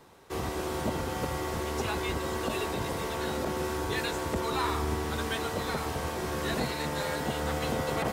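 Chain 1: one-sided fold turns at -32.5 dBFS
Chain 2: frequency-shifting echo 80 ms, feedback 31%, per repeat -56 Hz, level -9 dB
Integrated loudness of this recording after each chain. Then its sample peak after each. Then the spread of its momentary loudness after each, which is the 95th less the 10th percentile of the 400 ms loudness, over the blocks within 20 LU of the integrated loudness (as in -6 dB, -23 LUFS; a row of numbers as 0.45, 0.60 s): -34.0, -31.5 LUFS; -19.5, -17.5 dBFS; 2, 3 LU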